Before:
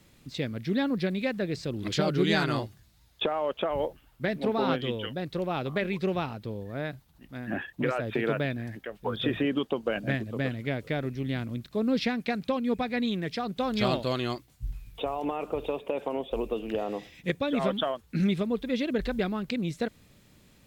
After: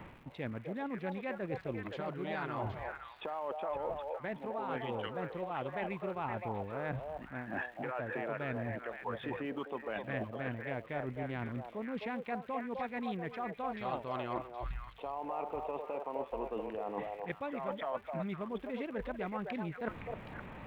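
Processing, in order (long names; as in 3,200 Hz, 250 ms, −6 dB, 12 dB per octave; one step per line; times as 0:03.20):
adaptive Wiener filter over 9 samples
parametric band 920 Hz +10.5 dB 0.96 octaves
reversed playback
downward compressor 12 to 1, threshold −47 dBFS, peak gain reduction 29 dB
reversed playback
surface crackle 330 per second −57 dBFS
high shelf with overshoot 3,700 Hz −13 dB, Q 1.5
echo through a band-pass that steps 257 ms, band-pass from 630 Hz, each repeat 1.4 octaves, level −1 dB
level +10 dB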